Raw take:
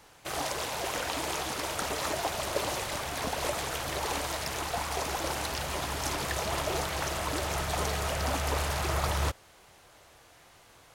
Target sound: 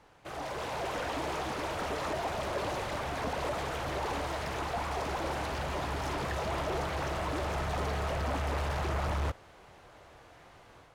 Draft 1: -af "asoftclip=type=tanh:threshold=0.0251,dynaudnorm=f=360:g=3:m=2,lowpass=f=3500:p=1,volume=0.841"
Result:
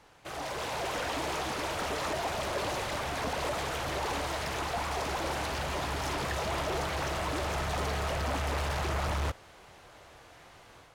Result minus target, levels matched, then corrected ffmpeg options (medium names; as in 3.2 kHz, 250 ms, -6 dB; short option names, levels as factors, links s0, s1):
4 kHz band +3.5 dB
-af "asoftclip=type=tanh:threshold=0.0251,dynaudnorm=f=360:g=3:m=2,lowpass=f=1600:p=1,volume=0.841"